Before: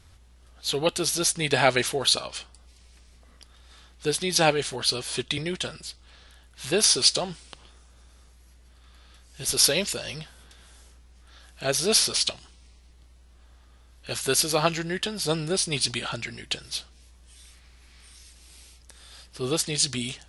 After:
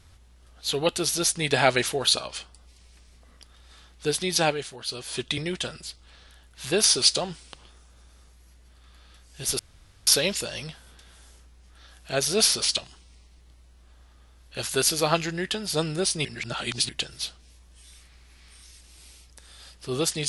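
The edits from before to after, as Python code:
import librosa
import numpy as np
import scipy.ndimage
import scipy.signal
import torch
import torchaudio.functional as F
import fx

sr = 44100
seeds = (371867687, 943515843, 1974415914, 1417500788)

y = fx.edit(x, sr, fx.fade_down_up(start_s=4.28, length_s=1.02, db=-9.5, fade_s=0.46),
    fx.insert_room_tone(at_s=9.59, length_s=0.48),
    fx.reverse_span(start_s=15.77, length_s=0.64), tone=tone)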